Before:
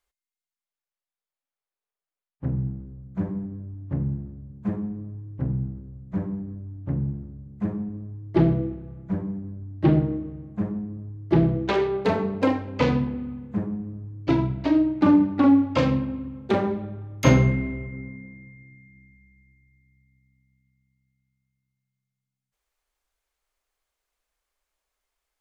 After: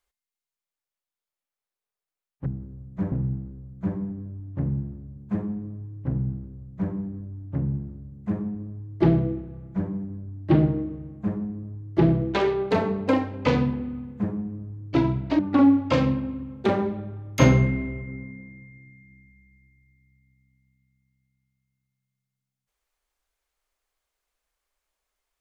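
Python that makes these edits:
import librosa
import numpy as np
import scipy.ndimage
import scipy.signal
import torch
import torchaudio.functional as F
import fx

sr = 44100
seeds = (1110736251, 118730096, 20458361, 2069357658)

y = fx.edit(x, sr, fx.duplicate(start_s=5.61, length_s=0.66, to_s=2.46),
    fx.cut(start_s=14.73, length_s=0.51), tone=tone)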